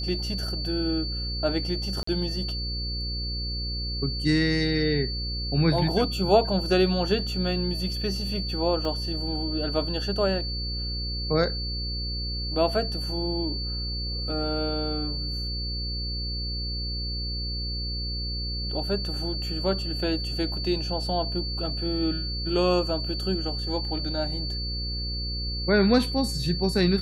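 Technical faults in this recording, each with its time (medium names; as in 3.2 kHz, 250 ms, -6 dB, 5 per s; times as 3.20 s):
buzz 60 Hz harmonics 9 -32 dBFS
whine 4.5 kHz -32 dBFS
2.03–2.07 s: dropout 44 ms
8.85 s: dropout 2.3 ms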